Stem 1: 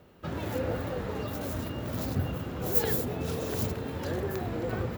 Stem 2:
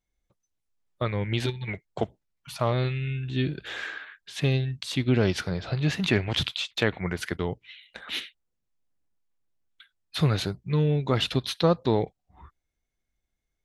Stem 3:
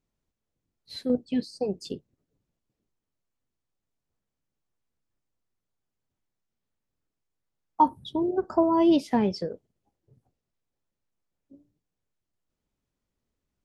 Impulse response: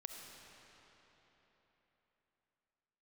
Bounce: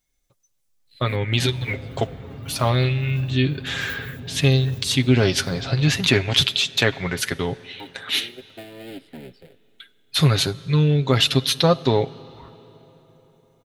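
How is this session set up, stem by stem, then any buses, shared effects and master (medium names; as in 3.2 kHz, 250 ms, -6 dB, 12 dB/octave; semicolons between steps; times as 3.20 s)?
-8.0 dB, 1.15 s, no send, tone controls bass +13 dB, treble -13 dB; compression, threshold -25 dBFS, peak gain reduction 13 dB
+2.5 dB, 0.00 s, send -12 dB, none
-13.5 dB, 0.00 s, send -16.5 dB, cycle switcher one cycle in 3, muted; low-pass 4 kHz 6 dB/octave; static phaser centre 2.6 kHz, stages 4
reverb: on, RT60 4.0 s, pre-delay 25 ms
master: treble shelf 3.3 kHz +10.5 dB; comb 7.4 ms, depth 48%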